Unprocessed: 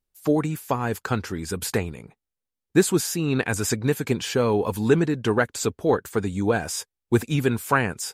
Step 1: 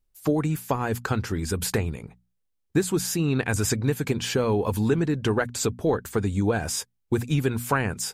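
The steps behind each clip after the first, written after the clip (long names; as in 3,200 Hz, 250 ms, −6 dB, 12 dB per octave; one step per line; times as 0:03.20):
low-shelf EQ 100 Hz +11 dB
downward compressor 3 to 1, threshold −21 dBFS, peak gain reduction 8.5 dB
mains-hum notches 60/120/180/240 Hz
level +1 dB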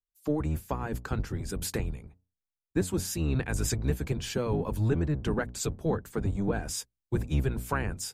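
sub-octave generator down 1 octave, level +2 dB
multiband upward and downward expander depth 40%
level −7.5 dB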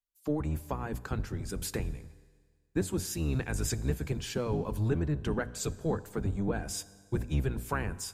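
convolution reverb RT60 1.7 s, pre-delay 10 ms, DRR 17 dB
level −2.5 dB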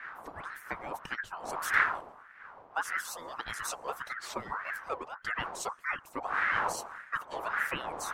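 harmonic-percussive split with one part muted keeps percussive
wind on the microphone 310 Hz −35 dBFS
ring modulator whose carrier an LFO sweeps 1,200 Hz, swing 40%, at 1.7 Hz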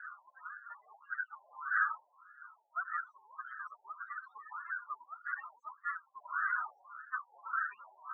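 frequency shifter −110 Hz
spectral peaks only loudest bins 8
flat-topped band-pass 1,400 Hz, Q 2.5
level +2 dB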